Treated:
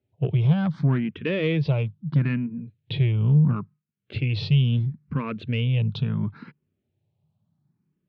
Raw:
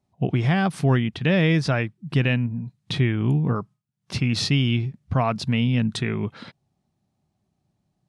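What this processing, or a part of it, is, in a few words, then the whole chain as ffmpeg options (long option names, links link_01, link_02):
barber-pole phaser into a guitar amplifier: -filter_complex "[0:a]asplit=2[link_01][link_02];[link_02]afreqshift=0.73[link_03];[link_01][link_03]amix=inputs=2:normalize=1,asoftclip=type=tanh:threshold=-17dB,highpass=84,equalizer=frequency=100:width_type=q:width=4:gain=8,equalizer=frequency=150:width_type=q:width=4:gain=7,equalizer=frequency=450:width_type=q:width=4:gain=4,equalizer=frequency=740:width_type=q:width=4:gain=-9,equalizer=frequency=1200:width_type=q:width=4:gain=-4,equalizer=frequency=1900:width_type=q:width=4:gain=-5,lowpass=frequency=3500:width=0.5412,lowpass=frequency=3500:width=1.3066"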